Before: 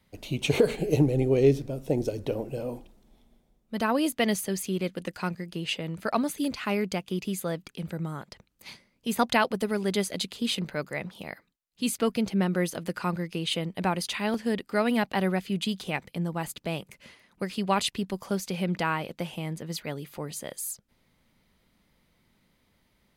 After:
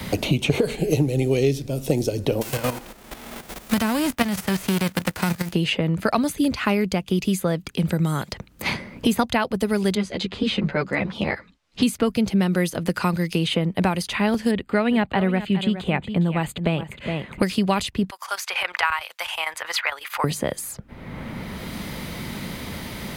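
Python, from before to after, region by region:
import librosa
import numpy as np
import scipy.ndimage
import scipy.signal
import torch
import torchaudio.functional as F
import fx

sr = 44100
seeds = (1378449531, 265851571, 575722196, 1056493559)

y = fx.envelope_flatten(x, sr, power=0.3, at=(2.41, 5.52), fade=0.02)
y = fx.level_steps(y, sr, step_db=11, at=(2.41, 5.52), fade=0.02)
y = fx.chain(y, sr, fx.lowpass(hz=4800.0, slope=12),
    fx.ensemble(), at=(9.95, 11.83))
y = fx.chain(y, sr, fx.moving_average(points=8),
    fx.echo_single(ms=413, db=-14.0), at=(14.51, 17.43))
y = fx.chain(y, sr, fx.highpass(hz=970.0, slope=24),
    fx.chopper(hz=11.0, depth_pct=65, duty_pct=80), at=(18.1, 20.24))
y = fx.peak_eq(y, sr, hz=64.0, db=9.5, octaves=2.1)
y = fx.band_squash(y, sr, depth_pct=100)
y = y * 10.0 ** (5.0 / 20.0)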